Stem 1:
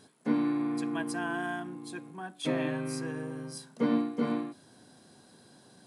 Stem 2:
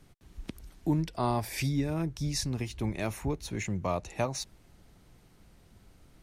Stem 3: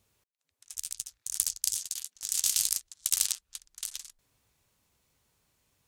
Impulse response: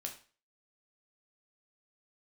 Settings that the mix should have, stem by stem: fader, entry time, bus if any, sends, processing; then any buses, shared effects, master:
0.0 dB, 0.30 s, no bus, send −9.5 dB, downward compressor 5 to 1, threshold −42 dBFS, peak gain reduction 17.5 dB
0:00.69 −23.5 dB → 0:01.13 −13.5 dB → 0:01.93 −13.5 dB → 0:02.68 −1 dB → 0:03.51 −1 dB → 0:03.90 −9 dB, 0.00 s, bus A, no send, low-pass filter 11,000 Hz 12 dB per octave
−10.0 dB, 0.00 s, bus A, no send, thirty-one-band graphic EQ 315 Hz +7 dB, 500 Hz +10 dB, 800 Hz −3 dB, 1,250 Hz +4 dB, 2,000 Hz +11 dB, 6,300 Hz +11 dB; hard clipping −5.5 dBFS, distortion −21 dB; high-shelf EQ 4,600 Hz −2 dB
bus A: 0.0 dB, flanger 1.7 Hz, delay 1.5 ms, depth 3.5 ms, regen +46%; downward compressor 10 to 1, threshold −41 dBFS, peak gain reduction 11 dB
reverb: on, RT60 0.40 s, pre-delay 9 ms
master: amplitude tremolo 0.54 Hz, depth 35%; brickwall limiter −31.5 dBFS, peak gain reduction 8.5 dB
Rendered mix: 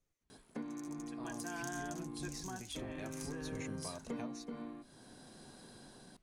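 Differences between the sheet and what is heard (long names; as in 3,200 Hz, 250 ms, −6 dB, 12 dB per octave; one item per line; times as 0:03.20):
stem 3 −10.0 dB → −17.0 dB
master: missing brickwall limiter −31.5 dBFS, peak gain reduction 8.5 dB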